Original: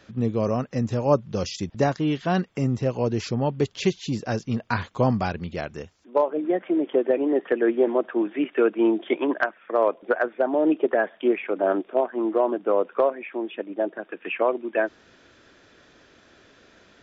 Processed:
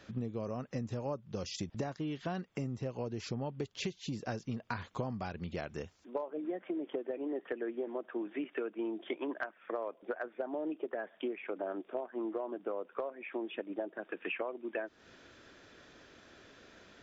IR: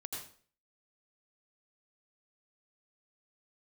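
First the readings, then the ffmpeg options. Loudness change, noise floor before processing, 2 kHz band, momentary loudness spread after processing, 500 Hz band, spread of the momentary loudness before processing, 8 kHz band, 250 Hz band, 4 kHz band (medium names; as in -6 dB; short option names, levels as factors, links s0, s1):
-15.0 dB, -56 dBFS, -13.0 dB, 19 LU, -15.5 dB, 8 LU, no reading, -14.5 dB, -9.5 dB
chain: -af "acompressor=threshold=0.0282:ratio=12,volume=0.708"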